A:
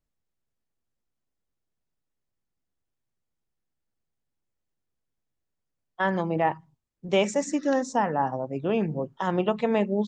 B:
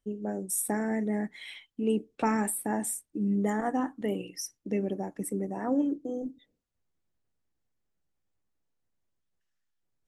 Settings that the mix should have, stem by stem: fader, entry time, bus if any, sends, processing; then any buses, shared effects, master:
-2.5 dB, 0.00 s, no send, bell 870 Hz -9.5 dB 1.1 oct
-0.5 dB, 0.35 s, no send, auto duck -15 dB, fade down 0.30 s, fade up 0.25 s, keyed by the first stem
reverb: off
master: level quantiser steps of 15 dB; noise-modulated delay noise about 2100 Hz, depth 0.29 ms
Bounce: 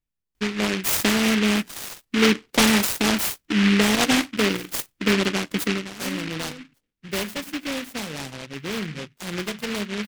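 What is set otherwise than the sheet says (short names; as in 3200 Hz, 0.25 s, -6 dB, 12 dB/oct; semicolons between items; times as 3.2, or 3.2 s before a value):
stem B -0.5 dB -> +9.5 dB; master: missing level quantiser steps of 15 dB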